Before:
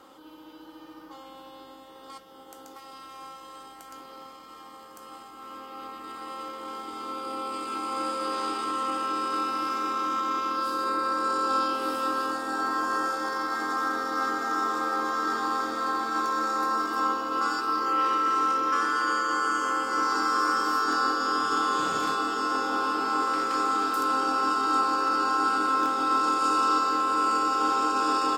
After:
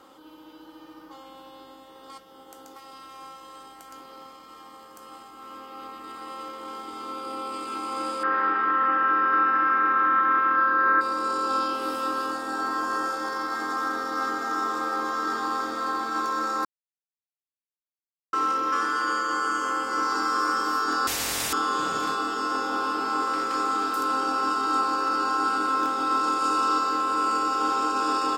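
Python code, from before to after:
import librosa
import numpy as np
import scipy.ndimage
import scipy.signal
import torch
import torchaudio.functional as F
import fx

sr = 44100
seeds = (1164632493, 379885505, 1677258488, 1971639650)

y = fx.lowpass_res(x, sr, hz=1700.0, q=11.0, at=(8.23, 11.01))
y = fx.spectral_comp(y, sr, ratio=10.0, at=(21.07, 21.53))
y = fx.edit(y, sr, fx.silence(start_s=16.65, length_s=1.68), tone=tone)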